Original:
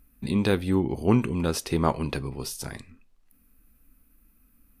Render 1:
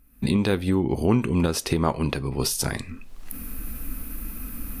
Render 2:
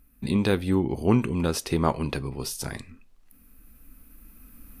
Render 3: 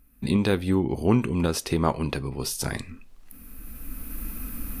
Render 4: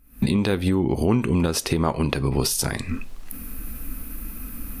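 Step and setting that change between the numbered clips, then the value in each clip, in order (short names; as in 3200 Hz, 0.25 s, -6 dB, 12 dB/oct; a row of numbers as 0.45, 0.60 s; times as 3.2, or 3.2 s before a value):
recorder AGC, rising by: 35, 5.1, 13, 90 dB/s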